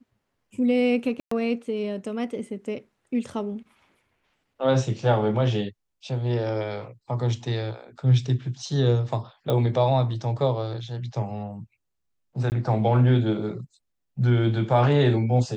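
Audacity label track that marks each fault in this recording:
1.200000	1.310000	drop-out 114 ms
9.500000	9.500000	click −14 dBFS
12.500000	12.520000	drop-out 19 ms

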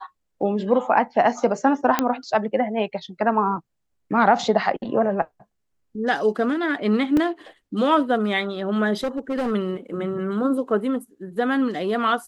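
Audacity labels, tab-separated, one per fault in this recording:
1.990000	1.990000	click −4 dBFS
7.170000	7.170000	drop-out 2.6 ms
9.030000	9.520000	clipping −20.5 dBFS

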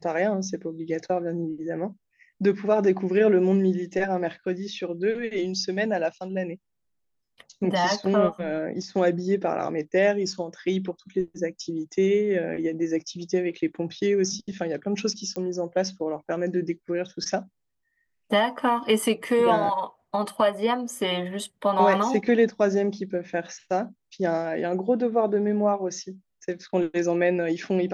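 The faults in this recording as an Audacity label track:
15.360000	15.360000	click −20 dBFS

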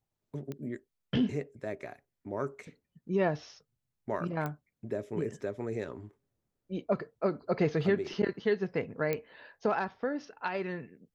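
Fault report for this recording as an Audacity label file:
0.520000	0.520000	click −26 dBFS
4.460000	4.460000	click −22 dBFS
9.130000	9.130000	click −18 dBFS

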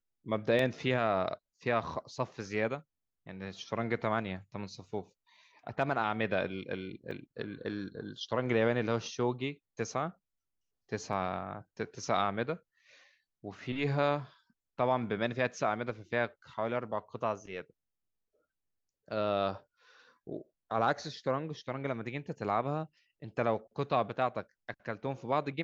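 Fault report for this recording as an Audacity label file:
0.590000	0.590000	drop-out 2.8 ms
7.110000	7.110000	drop-out 3.3 ms
11.130000	11.130000	drop-out 2.4 ms

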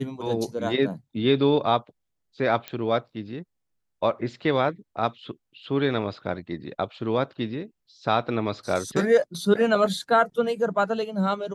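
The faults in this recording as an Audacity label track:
2.680000	2.680000	click −16 dBFS

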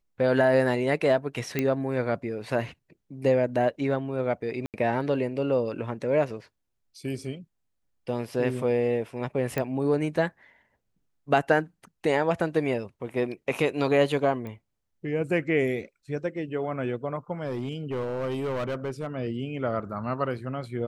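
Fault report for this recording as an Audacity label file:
1.590000	1.590000	click −12 dBFS
4.660000	4.740000	drop-out 78 ms
9.580000	9.580000	click −14 dBFS
14.470000	14.470000	click −26 dBFS
17.450000	19.070000	clipping −26 dBFS

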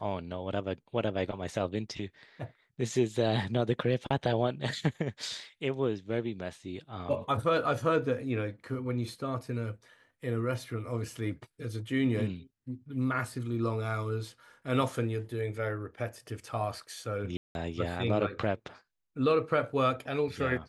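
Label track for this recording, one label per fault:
17.370000	17.550000	drop-out 181 ms

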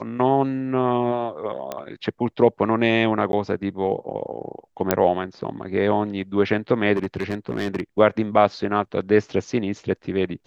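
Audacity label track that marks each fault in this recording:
1.720000	1.720000	click −14 dBFS
3.320000	3.330000	drop-out 11 ms
4.910000	4.910000	click −2 dBFS
6.950000	7.810000	clipping −18.5 dBFS

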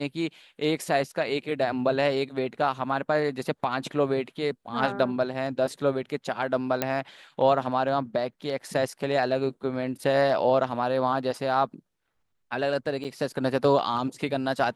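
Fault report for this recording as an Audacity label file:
6.820000	6.820000	click −9 dBFS
13.040000	13.050000	drop-out 7.7 ms

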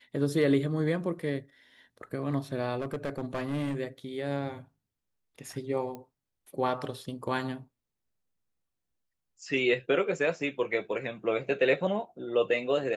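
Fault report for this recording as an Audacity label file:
2.790000	3.800000	clipping −27.5 dBFS
5.950000	5.950000	click −27 dBFS

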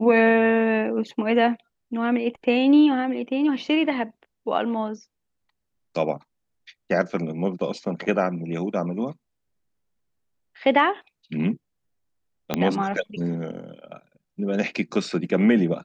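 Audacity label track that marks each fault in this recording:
12.540000	12.540000	click −8 dBFS

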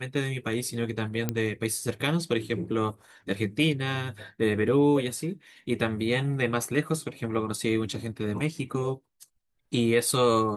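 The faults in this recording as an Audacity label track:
1.290000	1.290000	click −12 dBFS

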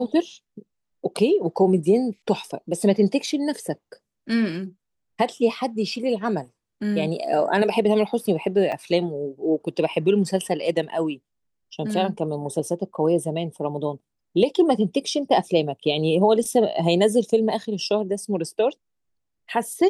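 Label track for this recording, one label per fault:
8.720000	8.720000	drop-out 4.4 ms

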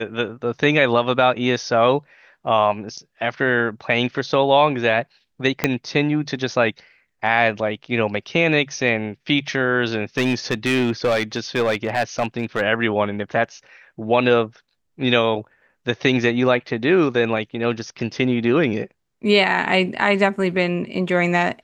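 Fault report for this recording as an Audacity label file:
5.640000	5.640000	click −2 dBFS
10.170000	12.610000	clipping −14 dBFS

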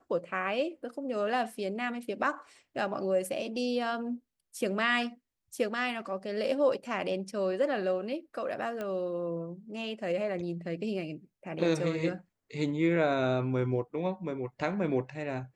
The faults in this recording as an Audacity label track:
8.810000	8.810000	click −23 dBFS

